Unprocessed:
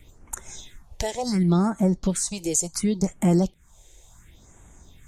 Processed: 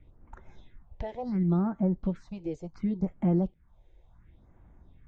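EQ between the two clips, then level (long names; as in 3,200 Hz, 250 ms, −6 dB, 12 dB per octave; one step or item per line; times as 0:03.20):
high-frequency loss of the air 130 metres
head-to-tape spacing loss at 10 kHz 40 dB
notch filter 420 Hz, Q 13
−4.5 dB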